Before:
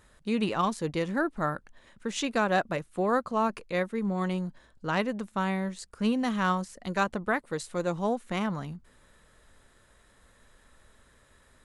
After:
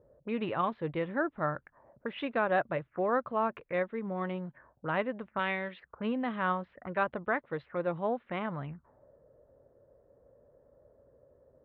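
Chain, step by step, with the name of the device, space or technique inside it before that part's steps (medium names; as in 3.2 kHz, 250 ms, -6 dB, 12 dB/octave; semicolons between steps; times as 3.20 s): envelope filter bass rig (touch-sensitive low-pass 480–3600 Hz up, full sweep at -29.5 dBFS; cabinet simulation 65–2100 Hz, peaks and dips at 130 Hz +6 dB, 200 Hz -6 dB, 590 Hz +4 dB); 5.39–5.80 s: frequency weighting D; trim -4 dB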